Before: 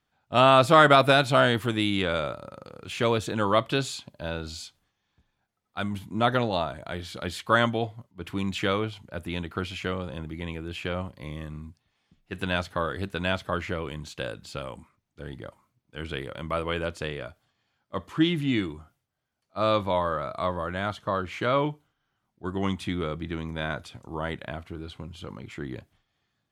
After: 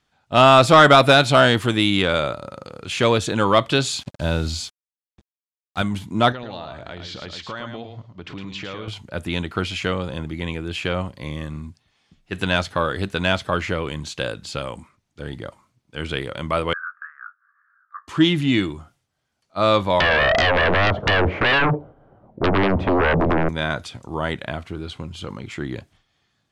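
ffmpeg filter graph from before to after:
ffmpeg -i in.wav -filter_complex "[0:a]asettb=1/sr,asplit=3[link_01][link_02][link_03];[link_01]atrim=end=3.934[link_04];[link_02]atrim=start=3.93:end=5.82,asetpts=PTS-STARTPTS,afade=type=in:duration=0.004:curve=qsin,afade=type=out:start_time=1.886:duration=0.004:curve=qsin,lowshelf=frequency=220:gain=9.5,acrusher=bits=7:mix=0:aa=0.5[link_05];[link_03]atrim=start=5.816[link_06];[link_04][link_05]acrossfade=duration=0.004:curve1=hsin:curve2=qsin[link_07];[link_07][link_06]acrossfade=duration=0.004:curve1=qsin:curve2=hsin,asettb=1/sr,asplit=3[link_08][link_09][link_10];[link_08]atrim=end=6.324[link_11];[link_09]atrim=start=6.32:end=8.88,asetpts=PTS-STARTPTS,afade=type=in:duration=0.004:curve=qsin,afade=type=out:start_time=2.556:duration=0.004:curve=qsin,acompressor=threshold=-39dB:ratio=4:attack=3.2:release=140:knee=1:detection=peak,lowpass=frequency=5800:width=0.5412,lowpass=frequency=5800:width=1.3066,aecho=1:1:109:0.447,atrim=end_sample=112896[link_12];[link_10]atrim=start=8.876[link_13];[link_11][link_12]acrossfade=duration=0.004:curve1=hsin:curve2=qsin[link_14];[link_14][link_13]acrossfade=duration=0.004:curve1=qsin:curve2=hsin,asettb=1/sr,asplit=3[link_15][link_16][link_17];[link_15]atrim=end=16.734[link_18];[link_16]atrim=start=16.73:end=18.08,asetpts=PTS-STARTPTS,afade=type=in:duration=0.004:curve=qsin,afade=type=out:start_time=1.346:duration=0.004:curve=qsin,asuperpass=centerf=1400:order=8:qfactor=2.7,acompressor=mode=upward:threshold=-57dB:ratio=2.5:attack=3.2:release=140:knee=2.83:detection=peak,asplit=2[link_19][link_20];[link_20]adelay=20,volume=-8dB[link_21];[link_19][link_21]amix=inputs=2:normalize=0,atrim=end_sample=59535[link_22];[link_17]atrim=start=18.076[link_23];[link_18][link_22]acrossfade=duration=0.004:curve1=hsin:curve2=qsin[link_24];[link_24][link_23]acrossfade=duration=0.004:curve1=qsin:curve2=hsin,asettb=1/sr,asplit=3[link_25][link_26][link_27];[link_25]atrim=end=20.004[link_28];[link_26]atrim=start=20:end=23.49,asetpts=PTS-STARTPTS,afade=type=in:duration=0.004:curve=qsin,afade=type=out:start_time=3.486:duration=0.004:curve=qsin,lowpass=frequency=580:width_type=q:width=2.9,acompressor=threshold=-30dB:ratio=8:attack=3.2:release=140:knee=1:detection=peak,aeval=exprs='0.0891*sin(PI/2*6.31*val(0)/0.0891)':channel_layout=same[link_29];[link_27]atrim=start=23.486[link_30];[link_28][link_29]acrossfade=duration=0.004:curve1=hsin:curve2=qsin[link_31];[link_31][link_30]acrossfade=duration=0.004:curve1=qsin:curve2=hsin,lowpass=7500,highshelf=frequency=5200:gain=8.5,acontrast=70" out.wav

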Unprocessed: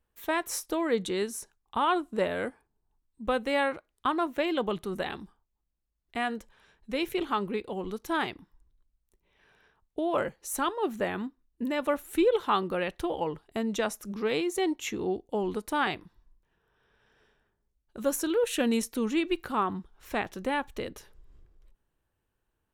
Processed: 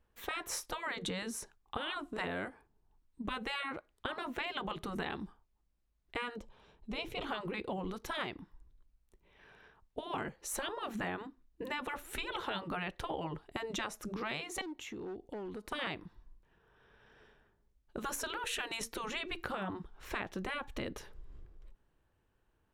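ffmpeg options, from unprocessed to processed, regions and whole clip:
ffmpeg -i in.wav -filter_complex "[0:a]asettb=1/sr,asplit=3[link_01][link_02][link_03];[link_01]atrim=end=6.364[link_04];[link_02]atrim=start=6.36:end=7.21,asetpts=PTS-STARTPTS,afade=type=in:duration=0.004:curve=qsin,afade=type=out:start_time=0.846:duration=0.004:curve=qsin,lowpass=frequency=3900:poles=1,equalizer=frequency=1700:width_type=o:width=0.76:gain=-12[link_05];[link_03]atrim=start=7.206[link_06];[link_04][link_05]acrossfade=duration=0.004:curve1=hsin:curve2=qsin[link_07];[link_07][link_06]acrossfade=duration=0.004:curve1=qsin:curve2=hsin,asettb=1/sr,asplit=3[link_08][link_09][link_10];[link_08]atrim=end=14.614[link_11];[link_09]atrim=start=14.61:end=15.72,asetpts=PTS-STARTPTS,afade=type=in:duration=0.004:curve=qsin,afade=type=out:start_time=1.106:duration=0.004:curve=qsin,asoftclip=type=hard:threshold=-27dB,acompressor=threshold=-44dB:ratio=16:attack=3.2:release=140:knee=1:detection=peak[link_12];[link_10]atrim=start=15.716[link_13];[link_11][link_12]acrossfade=duration=0.004:curve1=hsin:curve2=qsin[link_14];[link_14][link_13]acrossfade=duration=0.004:curve1=qsin:curve2=hsin,afftfilt=real='re*lt(hypot(re,im),0.141)':imag='im*lt(hypot(re,im),0.141)':win_size=1024:overlap=0.75,lowpass=frequency=3500:poles=1,acompressor=threshold=-39dB:ratio=6,volume=4.5dB" out.wav

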